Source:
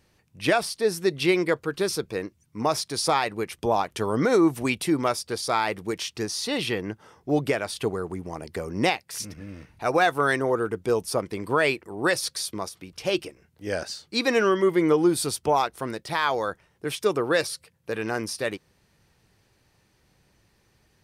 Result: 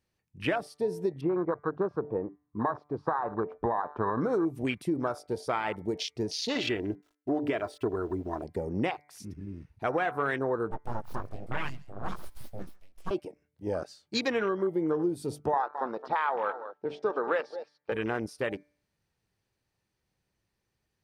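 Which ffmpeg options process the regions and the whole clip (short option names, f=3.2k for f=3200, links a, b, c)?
-filter_complex "[0:a]asettb=1/sr,asplit=3[a][b][c];[a]atrim=end=1.214[d];[b]atrim=start=1.21:end=4.21,asetpts=PTS-STARTPTS,afade=t=in:d=0.004:c=qsin,afade=t=out:st=2.996:d=0.004:c=qsin,lowpass=f=1.1k:t=q:w=3.8,acompressor=threshold=-17dB:ratio=6:attack=3.2:release=140:knee=1:detection=peak[e];[c]atrim=start=4.206[f];[d][e]acrossfade=d=0.004:c1=hsin:c2=qsin[g];[g][f]acrossfade=d=0.004:c1=qsin:c2=hsin,asettb=1/sr,asplit=3[h][i][j];[h]atrim=end=6.554[k];[i]atrim=start=6.55:end=8.44,asetpts=PTS-STARTPTS,afade=t=in:d=0.004:c=qsin,afade=t=out:st=1.886:d=0.004:c=qsin,aeval=exprs='val(0)*gte(abs(val(0)),0.00562)':c=same,equalizer=f=10k:w=0.61:g=-4,aecho=1:1:3:0.63,atrim=end_sample=83349[l];[j]atrim=start=8.436[m];[k][l]acrossfade=d=0.004:c1=hsin:c2=qsin[n];[n][m]acrossfade=d=0.004:c1=qsin:c2=hsin,asettb=1/sr,asplit=3[o][p][q];[o]atrim=end=10.714[r];[p]atrim=start=10.71:end=13.11,asetpts=PTS-STARTPTS,afade=t=in:d=0.004:c=qsin,afade=t=out:st=2.396:d=0.004:c=qsin,flanger=delay=15.5:depth=4.9:speed=1.1,aeval=exprs='abs(val(0))':c=same,aecho=1:1:139:0.112,atrim=end_sample=105840[s];[q]atrim=start=13.106[t];[r][s]acrossfade=d=0.004:c1=hsin:c2=qsin[u];[u][t]acrossfade=d=0.004:c1=qsin:c2=hsin,asettb=1/sr,asplit=3[v][w][x];[v]atrim=end=15.534[y];[w]atrim=start=15.53:end=17.92,asetpts=PTS-STARTPTS,afade=t=in:d=0.004:c=qsin,afade=t=out:st=2.386:d=0.004:c=qsin,highpass=230,equalizer=f=320:t=q:w=4:g=-4,equalizer=f=520:t=q:w=4:g=3,equalizer=f=850:t=q:w=4:g=9,equalizer=f=1.3k:t=q:w=4:g=6,lowpass=f=5.1k:w=0.5412,lowpass=f=5.1k:w=1.3066,aecho=1:1:217:0.168,atrim=end_sample=105399[z];[x]atrim=start=17.916[aa];[y][z]acrossfade=d=0.004:c1=hsin:c2=qsin[ab];[ab][aa]acrossfade=d=0.004:c1=qsin:c2=hsin,bandreject=f=147.2:t=h:w=4,bandreject=f=294.4:t=h:w=4,bandreject=f=441.6:t=h:w=4,bandreject=f=588.8:t=h:w=4,bandreject=f=736:t=h:w=4,bandreject=f=883.2:t=h:w=4,bandreject=f=1.0304k:t=h:w=4,bandreject=f=1.1776k:t=h:w=4,bandreject=f=1.3248k:t=h:w=4,bandreject=f=1.472k:t=h:w=4,bandreject=f=1.6192k:t=h:w=4,bandreject=f=1.7664k:t=h:w=4,bandreject=f=1.9136k:t=h:w=4,bandreject=f=2.0608k:t=h:w=4,bandreject=f=2.208k:t=h:w=4,bandreject=f=2.3552k:t=h:w=4,acompressor=threshold=-26dB:ratio=4,afwtdn=0.02"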